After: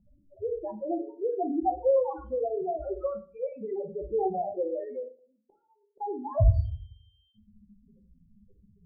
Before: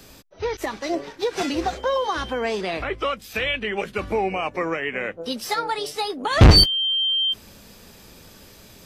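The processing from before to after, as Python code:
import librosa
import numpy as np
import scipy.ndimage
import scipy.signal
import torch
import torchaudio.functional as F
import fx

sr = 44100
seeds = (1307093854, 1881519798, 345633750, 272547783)

y = fx.spec_topn(x, sr, count=2)
y = fx.gate_flip(y, sr, shuts_db=-34.0, range_db=-35, at=(5.02, 6.0), fade=0.02)
y = fx.ladder_lowpass(y, sr, hz=820.0, resonance_pct=45)
y = fx.room_shoebox(y, sr, seeds[0], volume_m3=270.0, walls='furnished', distance_m=0.98)
y = y * 10.0 ** (3.5 / 20.0)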